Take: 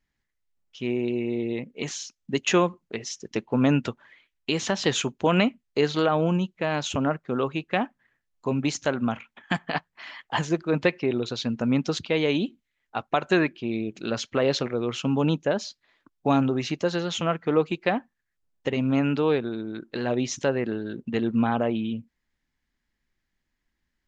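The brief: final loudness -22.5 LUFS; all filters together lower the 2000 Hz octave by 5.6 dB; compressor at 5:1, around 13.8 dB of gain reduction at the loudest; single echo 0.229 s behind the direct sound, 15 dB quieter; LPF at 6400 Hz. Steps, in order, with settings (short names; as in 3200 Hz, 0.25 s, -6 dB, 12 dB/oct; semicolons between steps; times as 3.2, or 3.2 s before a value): LPF 6400 Hz; bell 2000 Hz -7.5 dB; compressor 5:1, threshold -33 dBFS; echo 0.229 s -15 dB; gain +15 dB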